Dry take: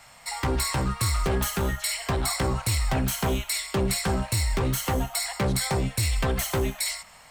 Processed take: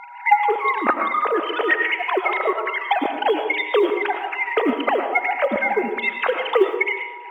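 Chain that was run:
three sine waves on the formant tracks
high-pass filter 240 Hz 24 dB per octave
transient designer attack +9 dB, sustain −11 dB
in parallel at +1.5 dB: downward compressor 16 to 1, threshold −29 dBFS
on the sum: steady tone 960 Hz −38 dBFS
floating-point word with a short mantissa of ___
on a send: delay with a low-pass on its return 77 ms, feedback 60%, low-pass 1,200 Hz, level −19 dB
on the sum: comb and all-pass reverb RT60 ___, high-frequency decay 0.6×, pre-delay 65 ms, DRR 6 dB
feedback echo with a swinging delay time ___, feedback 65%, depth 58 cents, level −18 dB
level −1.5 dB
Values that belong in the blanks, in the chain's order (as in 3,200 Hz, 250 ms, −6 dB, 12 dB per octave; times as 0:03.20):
6 bits, 0.62 s, 111 ms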